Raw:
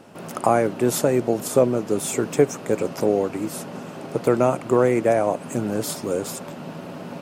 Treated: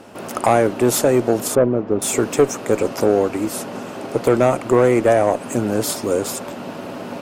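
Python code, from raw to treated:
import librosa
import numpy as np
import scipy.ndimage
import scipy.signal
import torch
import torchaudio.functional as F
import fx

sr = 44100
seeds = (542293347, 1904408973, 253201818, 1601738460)

y = fx.spacing_loss(x, sr, db_at_10k=43, at=(1.55, 2.02))
y = fx.tube_stage(y, sr, drive_db=12.0, bias=0.25)
y = fx.peak_eq(y, sr, hz=160.0, db=-11.0, octaves=0.37)
y = F.gain(torch.from_numpy(y), 6.5).numpy()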